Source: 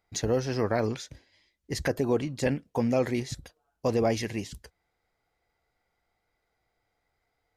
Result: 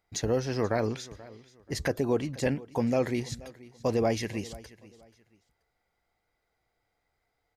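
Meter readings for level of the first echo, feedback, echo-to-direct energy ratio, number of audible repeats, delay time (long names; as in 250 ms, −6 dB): −20.0 dB, 28%, −19.5 dB, 2, 482 ms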